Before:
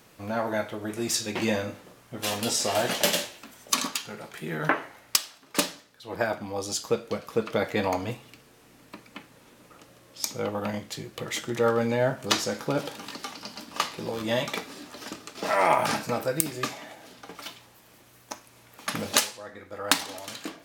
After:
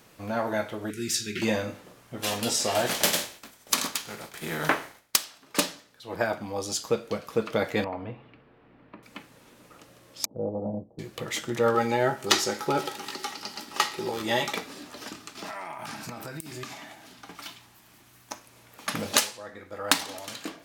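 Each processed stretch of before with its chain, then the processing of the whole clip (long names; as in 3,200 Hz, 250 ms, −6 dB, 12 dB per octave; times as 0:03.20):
0:00.90–0:01.42: Chebyshev band-stop filter 420–1,400 Hz, order 4 + dynamic equaliser 290 Hz, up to −5 dB, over −44 dBFS, Q 3.1
0:02.86–0:05.23: compressing power law on the bin magnitudes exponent 0.65 + downward expander −47 dBFS + notch filter 2,800 Hz, Q 23
0:07.84–0:09.03: downward compressor 1.5 to 1, threshold −40 dBFS + Gaussian smoothing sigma 3.3 samples
0:10.25–0:10.99: Butterworth low-pass 750 Hz + noise gate −41 dBFS, range −6 dB
0:11.74–0:14.53: tilt shelving filter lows −3.5 dB, about 1,500 Hz + hollow resonant body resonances 380/830/1,300/1,900 Hz, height 14 dB, ringing for 90 ms
0:15.10–0:18.32: parametric band 510 Hz −11.5 dB 0.46 octaves + downward compressor 20 to 1, threshold −33 dBFS
whole clip: no processing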